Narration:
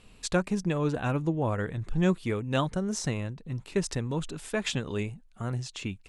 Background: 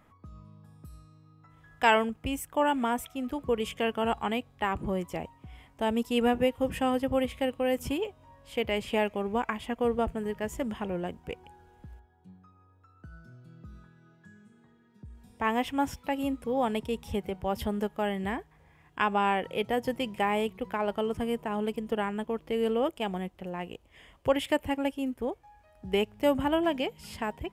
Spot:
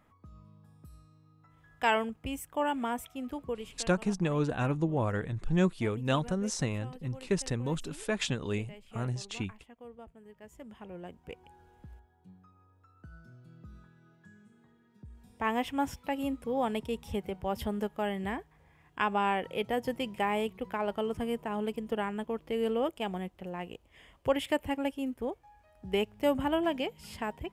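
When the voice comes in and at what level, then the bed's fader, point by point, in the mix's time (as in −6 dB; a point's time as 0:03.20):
3.55 s, −1.5 dB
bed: 0:03.41 −4.5 dB
0:03.97 −21.5 dB
0:10.20 −21.5 dB
0:11.62 −2.5 dB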